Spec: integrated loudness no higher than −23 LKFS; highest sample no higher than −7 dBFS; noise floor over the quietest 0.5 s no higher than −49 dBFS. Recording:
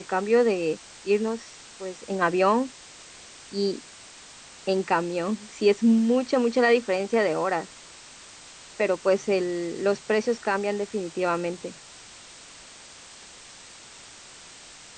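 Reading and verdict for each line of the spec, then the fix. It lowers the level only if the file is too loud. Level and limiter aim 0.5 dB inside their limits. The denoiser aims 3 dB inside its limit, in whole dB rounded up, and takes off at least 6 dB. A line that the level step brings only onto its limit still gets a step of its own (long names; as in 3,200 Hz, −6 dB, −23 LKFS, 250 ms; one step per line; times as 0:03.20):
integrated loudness −25.0 LKFS: in spec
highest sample −8.5 dBFS: in spec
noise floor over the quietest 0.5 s −47 dBFS: out of spec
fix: broadband denoise 6 dB, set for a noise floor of −47 dBFS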